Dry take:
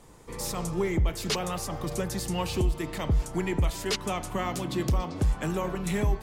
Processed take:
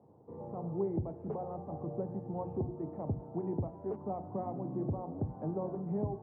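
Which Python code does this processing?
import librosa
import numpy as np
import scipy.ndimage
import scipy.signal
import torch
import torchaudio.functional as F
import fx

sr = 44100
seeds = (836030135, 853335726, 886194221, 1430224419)

y = scipy.signal.sosfilt(scipy.signal.ellip(3, 1.0, 60, [100.0, 800.0], 'bandpass', fs=sr, output='sos'), x)
y = fx.hum_notches(y, sr, base_hz=60, count=6)
y = y * librosa.db_to_amplitude(-4.5)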